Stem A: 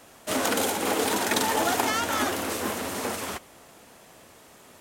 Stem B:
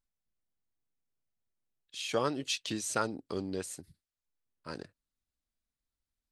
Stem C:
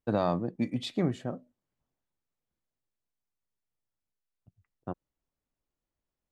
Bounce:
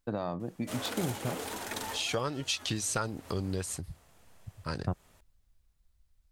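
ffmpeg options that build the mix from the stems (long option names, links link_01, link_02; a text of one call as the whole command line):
ffmpeg -i stem1.wav -i stem2.wav -i stem3.wav -filter_complex "[0:a]adelay=400,volume=-12.5dB[link_01];[1:a]acontrast=86,volume=0.5dB,asplit=2[link_02][link_03];[2:a]dynaudnorm=framelen=250:gausssize=9:maxgain=8.5dB,volume=-2dB[link_04];[link_03]apad=whole_len=229584[link_05];[link_01][link_05]sidechaincompress=threshold=-37dB:ratio=8:attack=5.2:release=248[link_06];[link_02][link_04]amix=inputs=2:normalize=0,acompressor=threshold=-31dB:ratio=2.5,volume=0dB[link_07];[link_06][link_07]amix=inputs=2:normalize=0,asubboost=boost=7:cutoff=110" out.wav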